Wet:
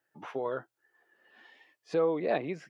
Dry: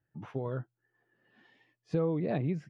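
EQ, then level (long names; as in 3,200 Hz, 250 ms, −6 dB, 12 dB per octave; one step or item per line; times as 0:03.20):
high-pass filter 480 Hz 12 dB per octave
+7.5 dB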